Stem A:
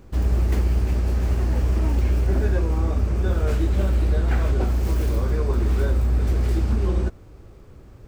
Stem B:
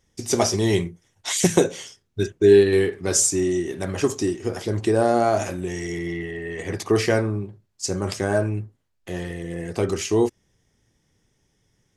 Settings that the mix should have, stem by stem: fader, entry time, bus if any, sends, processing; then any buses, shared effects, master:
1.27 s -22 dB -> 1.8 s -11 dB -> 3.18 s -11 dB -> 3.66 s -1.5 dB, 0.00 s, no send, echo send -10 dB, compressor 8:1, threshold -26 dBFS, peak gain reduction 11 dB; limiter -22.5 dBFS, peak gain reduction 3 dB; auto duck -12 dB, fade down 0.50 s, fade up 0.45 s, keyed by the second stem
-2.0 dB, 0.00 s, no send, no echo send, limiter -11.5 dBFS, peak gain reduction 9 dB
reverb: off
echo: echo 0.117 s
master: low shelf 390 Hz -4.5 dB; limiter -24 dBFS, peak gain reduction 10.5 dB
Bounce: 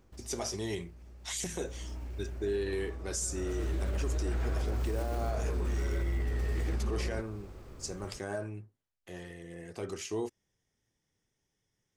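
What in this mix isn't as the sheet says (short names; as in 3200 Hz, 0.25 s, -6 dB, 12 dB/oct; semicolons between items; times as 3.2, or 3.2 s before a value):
stem A -22.0 dB -> -12.0 dB; stem B -2.0 dB -> -12.0 dB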